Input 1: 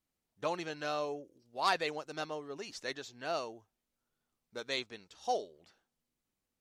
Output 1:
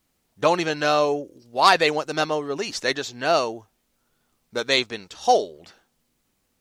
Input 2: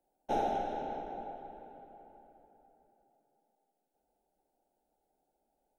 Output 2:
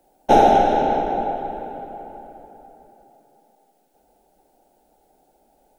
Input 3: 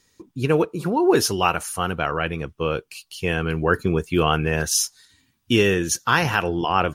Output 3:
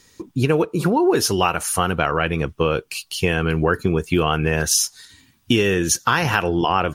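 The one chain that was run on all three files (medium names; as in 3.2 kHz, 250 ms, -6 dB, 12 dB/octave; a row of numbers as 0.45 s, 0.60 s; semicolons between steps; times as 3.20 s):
compression 4:1, threshold -25 dBFS; peak normalisation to -2 dBFS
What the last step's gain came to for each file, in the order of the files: +16.0 dB, +19.5 dB, +9.5 dB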